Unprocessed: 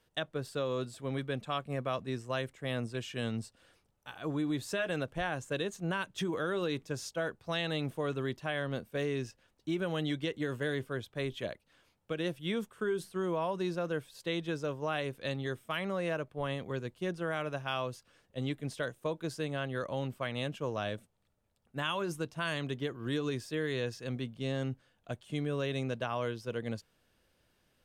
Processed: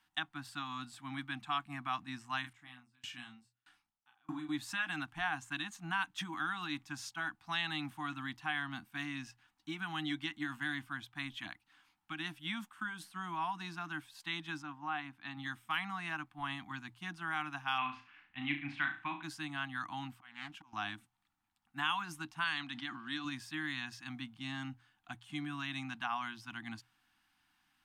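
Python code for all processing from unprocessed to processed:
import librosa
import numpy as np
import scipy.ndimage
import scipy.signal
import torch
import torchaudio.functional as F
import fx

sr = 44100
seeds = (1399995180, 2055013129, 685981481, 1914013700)

y = fx.chain(x, sr, fx.doubler(ms=32.0, db=-3.5),
    fx.tremolo_decay(direction='decaying', hz=1.6, depth_db=33), at=(2.41, 4.49))
y = fx.chain(y, sr, fx.lowpass(hz=1400.0, slope=6),
    fx.low_shelf(hz=150.0, db=-7.5), at=(14.62, 15.37))
y = fx.chain(y, sr, fx.lowpass_res(hz=2400.0, q=3.1),
    fx.room_flutter(wall_m=6.0, rt60_s=0.34), at=(17.78, 19.23))
y = fx.chain(y, sr, fx.low_shelf(hz=380.0, db=-4.5),
    fx.auto_swell(attack_ms=475.0),
    fx.doppler_dist(depth_ms=0.53), at=(20.13, 20.73))
y = fx.chain(y, sr, fx.cabinet(low_hz=200.0, low_slope=12, high_hz=8400.0, hz=(310.0, 570.0, 1000.0, 4100.0, 6800.0), db=(-4, -9, -3, 5, -6)),
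    fx.sustainer(db_per_s=58.0), at=(22.44, 23.25))
y = scipy.signal.sosfilt(scipy.signal.cheby1(4, 1.0, [310.0, 750.0], 'bandstop', fs=sr, output='sos'), y)
y = fx.bass_treble(y, sr, bass_db=-14, treble_db=-5)
y = fx.hum_notches(y, sr, base_hz=60, count=2)
y = F.gain(torch.from_numpy(y), 2.0).numpy()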